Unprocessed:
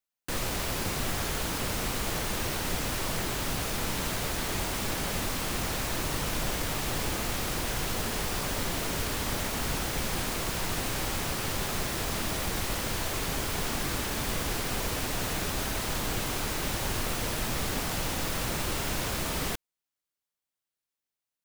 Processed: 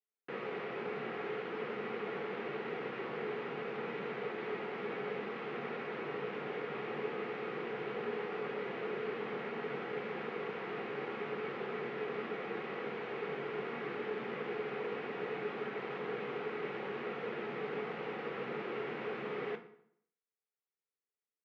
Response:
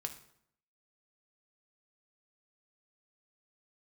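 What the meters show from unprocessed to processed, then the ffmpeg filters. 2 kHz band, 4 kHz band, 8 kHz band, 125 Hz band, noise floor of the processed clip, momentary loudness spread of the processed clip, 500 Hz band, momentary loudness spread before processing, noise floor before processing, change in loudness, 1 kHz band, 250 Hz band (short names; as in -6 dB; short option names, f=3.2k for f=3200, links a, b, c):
-7.5 dB, -19.0 dB, under -40 dB, -17.5 dB, under -85 dBFS, 1 LU, 0.0 dB, 0 LU, under -85 dBFS, -9.0 dB, -7.5 dB, -8.5 dB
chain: -filter_complex "[0:a]highpass=f=220:w=0.5412,highpass=f=220:w=1.3066,equalizer=f=280:t=q:w=4:g=-9,equalizer=f=440:t=q:w=4:g=8,equalizer=f=630:t=q:w=4:g=-9,equalizer=f=1k:t=q:w=4:g=-7,equalizer=f=1.6k:t=q:w=4:g=-5,lowpass=f=2.2k:w=0.5412,lowpass=f=2.2k:w=1.3066[a];[1:a]atrim=start_sample=2205[b];[a][b]afir=irnorm=-1:irlink=0,volume=-1.5dB"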